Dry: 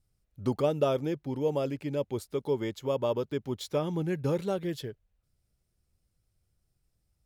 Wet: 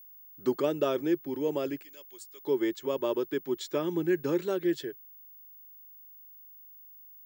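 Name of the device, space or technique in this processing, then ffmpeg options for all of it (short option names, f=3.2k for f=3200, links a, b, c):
old television with a line whistle: -filter_complex "[0:a]asettb=1/sr,asplit=3[a][b][c];[a]atrim=end=1.824[d];[b]atrim=start=1.82:end=2.43,asetpts=PTS-STARTPTS,afade=t=in:d=0.004:c=qsin,afade=t=out:st=0.606:d=0.004:c=qsin,aderivative[e];[c]atrim=start=2.426[f];[d][e]acrossfade=d=0.004:c1=hsin:c2=qsin[g];[g][f]acrossfade=d=0.004:c1=qsin:c2=hsin,highpass=f=180:w=0.5412,highpass=f=180:w=1.3066,equalizer=f=210:t=q:w=4:g=-9,equalizer=f=350:t=q:w=4:g=9,equalizer=f=500:t=q:w=4:g=-4,equalizer=f=760:t=q:w=4:g=-6,equalizer=f=1.7k:t=q:w=4:g=7,equalizer=f=7.5k:t=q:w=4:g=4,lowpass=f=8.5k:w=0.5412,lowpass=f=8.5k:w=1.3066,aeval=exprs='val(0)+0.00355*sin(2*PI*15625*n/s)':c=same"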